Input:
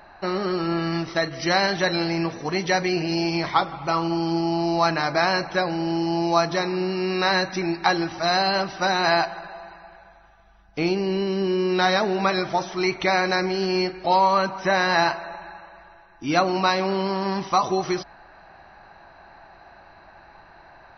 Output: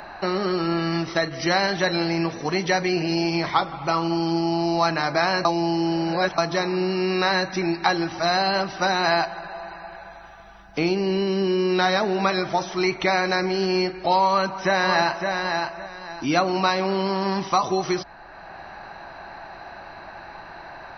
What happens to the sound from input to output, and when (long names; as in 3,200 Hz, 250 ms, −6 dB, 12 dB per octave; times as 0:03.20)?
0:05.45–0:06.38: reverse
0:14.27–0:15.30: delay throw 560 ms, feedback 15%, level −6.5 dB
whole clip: multiband upward and downward compressor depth 40%